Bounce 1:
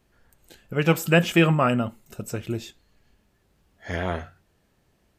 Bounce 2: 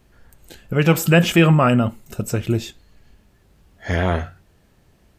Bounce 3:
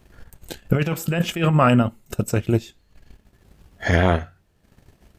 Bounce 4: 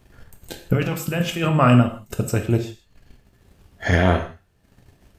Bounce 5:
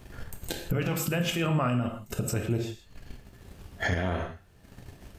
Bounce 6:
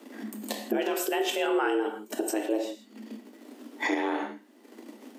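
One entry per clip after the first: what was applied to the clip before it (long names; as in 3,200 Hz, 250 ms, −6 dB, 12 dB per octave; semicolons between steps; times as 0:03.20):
low-shelf EQ 150 Hz +5.5 dB; in parallel at +2 dB: brickwall limiter −16 dBFS, peak gain reduction 11.5 dB
transient designer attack +10 dB, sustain −9 dB; compressor whose output falls as the input rises −15 dBFS, ratio −1; level −2.5 dB
reverb whose tail is shaped and stops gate 190 ms falling, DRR 5 dB; level −1 dB
downward compressor 2 to 1, threshold −34 dBFS, peak gain reduction 13.5 dB; brickwall limiter −23.5 dBFS, peak gain reduction 10 dB; level +5.5 dB
frequency shifter +210 Hz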